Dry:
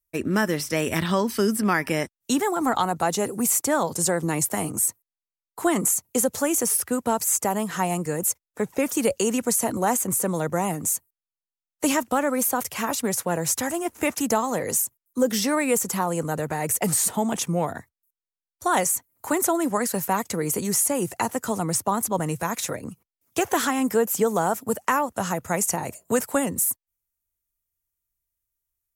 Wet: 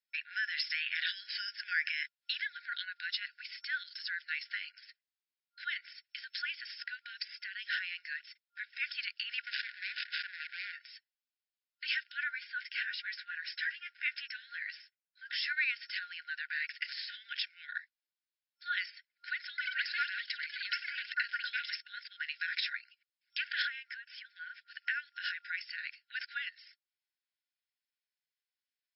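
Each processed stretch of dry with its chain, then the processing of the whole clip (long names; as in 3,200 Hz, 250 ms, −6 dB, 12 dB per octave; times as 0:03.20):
0:09.46–0:10.73: running median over 41 samples + high-pass filter 200 Hz 24 dB per octave + background raised ahead of every attack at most 26 dB per second
0:12.29–0:15.57: high-pass filter 260 Hz + high-shelf EQ 2,700 Hz −11 dB + double-tracking delay 13 ms −8 dB
0:19.49–0:22.77: delay with pitch and tempo change per echo 90 ms, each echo +7 semitones, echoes 2, each echo −6 dB + multiband upward and downward compressor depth 40%
0:23.62–0:24.68: high-shelf EQ 3,300 Hz −10.5 dB + downward compressor 4 to 1, threshold −28 dBFS
whole clip: brickwall limiter −18.5 dBFS; brick-wall band-pass 1,400–5,400 Hz; level +2.5 dB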